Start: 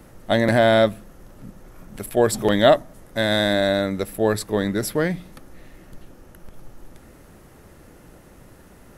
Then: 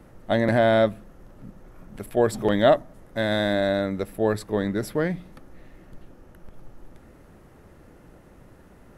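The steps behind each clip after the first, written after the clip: treble shelf 3.4 kHz -9.5 dB; trim -2.5 dB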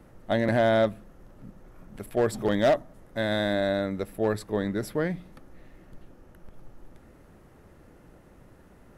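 overload inside the chain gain 13 dB; trim -3 dB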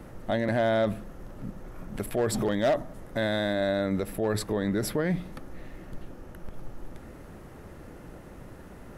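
peak limiter -27 dBFS, peak gain reduction 11 dB; trim +8 dB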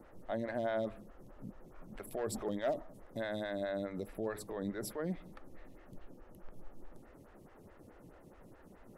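lamp-driven phase shifter 4.7 Hz; trim -8.5 dB

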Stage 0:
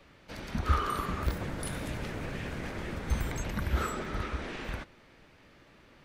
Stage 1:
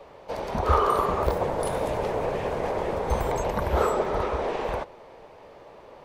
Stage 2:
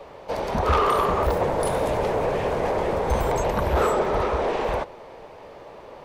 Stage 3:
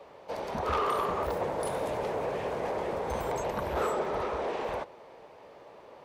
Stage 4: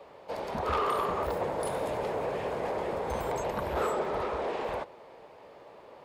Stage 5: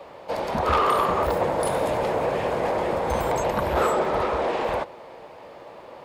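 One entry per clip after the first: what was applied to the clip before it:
high-order bell 650 Hz +15 dB; trim +2 dB
saturation -19.5 dBFS, distortion -14 dB; trim +5 dB
high-pass 140 Hz 6 dB/octave; trim -8 dB
band-stop 5.9 kHz, Q 13
band-stop 420 Hz, Q 12; trim +8.5 dB

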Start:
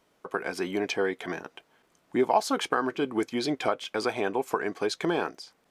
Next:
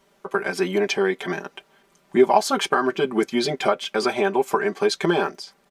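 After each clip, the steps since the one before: comb 5.1 ms, depth 95%; trim +4 dB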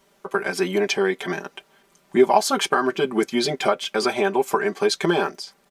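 treble shelf 4.9 kHz +4.5 dB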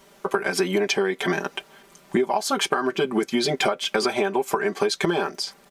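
compression 12:1, threshold -26 dBFS, peak gain reduction 16.5 dB; trim +7.5 dB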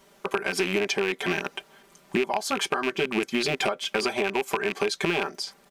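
rattle on loud lows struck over -33 dBFS, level -13 dBFS; trim -4 dB

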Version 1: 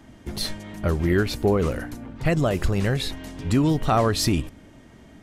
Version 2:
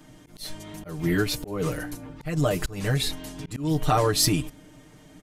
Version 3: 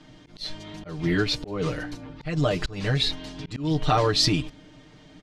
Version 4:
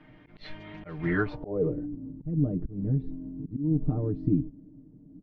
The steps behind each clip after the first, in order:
treble shelf 5.8 kHz +10 dB; comb 6.6 ms, depth 97%; slow attack 240 ms; trim -4.5 dB
resonant low-pass 4.3 kHz, resonance Q 1.7
low-pass sweep 2.2 kHz -> 260 Hz, 0.96–1.87 s; tape noise reduction on one side only decoder only; trim -4 dB

